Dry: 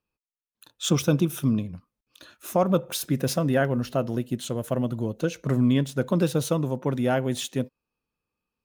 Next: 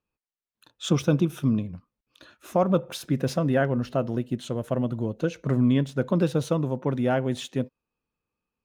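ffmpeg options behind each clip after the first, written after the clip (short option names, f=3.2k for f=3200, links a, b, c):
-af "aemphasis=mode=reproduction:type=50kf"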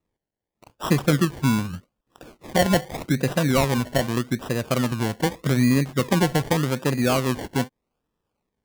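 -filter_complex "[0:a]asplit=2[a][b];[b]acompressor=threshold=-30dB:ratio=6,volume=1dB[c];[a][c]amix=inputs=2:normalize=0,acrusher=samples=28:mix=1:aa=0.000001:lfo=1:lforange=16.8:lforate=0.83"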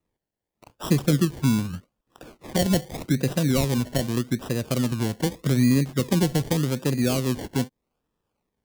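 -filter_complex "[0:a]acrossover=split=500|3000[a][b][c];[b]acompressor=threshold=-40dB:ratio=2.5[d];[a][d][c]amix=inputs=3:normalize=0"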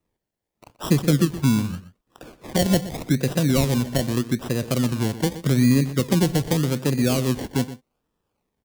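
-filter_complex "[0:a]asplit=2[a][b];[b]adelay=122.4,volume=-14dB,highshelf=f=4k:g=-2.76[c];[a][c]amix=inputs=2:normalize=0,volume=2dB"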